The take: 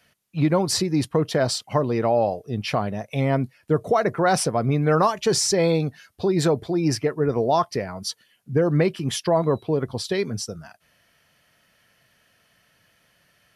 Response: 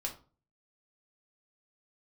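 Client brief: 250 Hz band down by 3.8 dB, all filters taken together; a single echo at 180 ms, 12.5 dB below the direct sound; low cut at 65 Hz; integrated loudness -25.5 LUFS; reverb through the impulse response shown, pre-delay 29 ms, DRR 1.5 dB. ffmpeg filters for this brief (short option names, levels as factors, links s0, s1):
-filter_complex "[0:a]highpass=65,equalizer=f=250:t=o:g=-6,aecho=1:1:180:0.237,asplit=2[s0][s1];[1:a]atrim=start_sample=2205,adelay=29[s2];[s1][s2]afir=irnorm=-1:irlink=0,volume=0.794[s3];[s0][s3]amix=inputs=2:normalize=0,volume=0.631"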